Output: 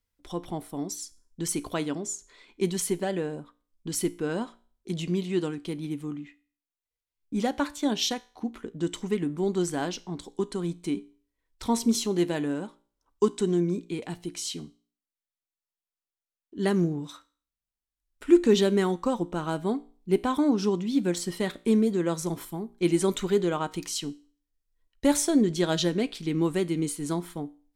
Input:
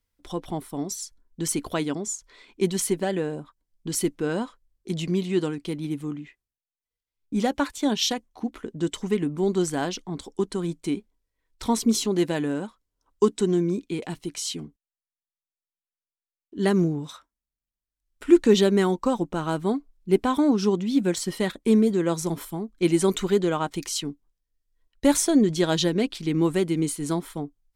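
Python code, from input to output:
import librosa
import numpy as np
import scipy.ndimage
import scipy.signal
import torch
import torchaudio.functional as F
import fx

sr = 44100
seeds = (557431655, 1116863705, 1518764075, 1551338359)

y = fx.comb_fb(x, sr, f0_hz=58.0, decay_s=0.42, harmonics='all', damping=0.0, mix_pct=40)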